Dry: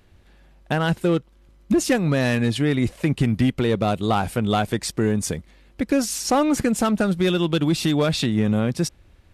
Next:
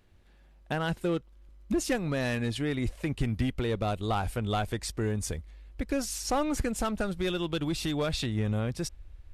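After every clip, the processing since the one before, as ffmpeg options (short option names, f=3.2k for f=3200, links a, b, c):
-af "asubboost=boost=9:cutoff=58,volume=-8dB"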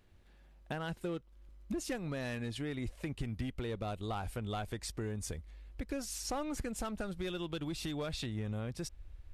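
-af "acompressor=threshold=-37dB:ratio=2,volume=-2.5dB"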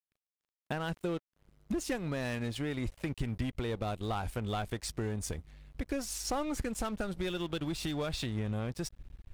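-af "aeval=exprs='sgn(val(0))*max(abs(val(0))-0.002,0)':c=same,volume=4.5dB"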